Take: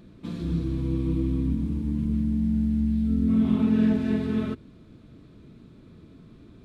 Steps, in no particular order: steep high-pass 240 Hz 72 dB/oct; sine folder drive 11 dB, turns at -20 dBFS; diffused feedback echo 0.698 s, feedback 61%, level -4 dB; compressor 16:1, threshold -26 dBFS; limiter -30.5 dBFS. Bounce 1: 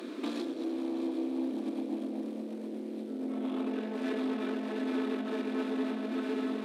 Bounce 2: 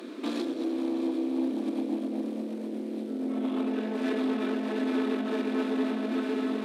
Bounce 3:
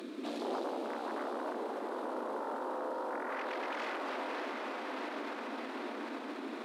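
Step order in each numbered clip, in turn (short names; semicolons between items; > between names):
diffused feedback echo > limiter > sine folder > compressor > steep high-pass; diffused feedback echo > compressor > limiter > sine folder > steep high-pass; sine folder > compressor > diffused feedback echo > limiter > steep high-pass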